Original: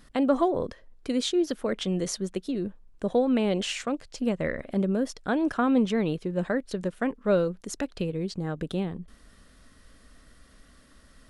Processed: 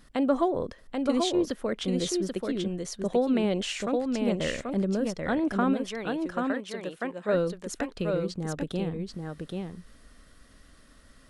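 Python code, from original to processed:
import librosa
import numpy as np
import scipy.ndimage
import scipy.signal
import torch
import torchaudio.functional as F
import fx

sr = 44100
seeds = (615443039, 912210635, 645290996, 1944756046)

y = fx.highpass(x, sr, hz=fx.line((5.73, 1000.0), (7.33, 410.0)), slope=6, at=(5.73, 7.33), fade=0.02)
y = y + 10.0 ** (-4.0 / 20.0) * np.pad(y, (int(785 * sr / 1000.0), 0))[:len(y)]
y = y * librosa.db_to_amplitude(-1.5)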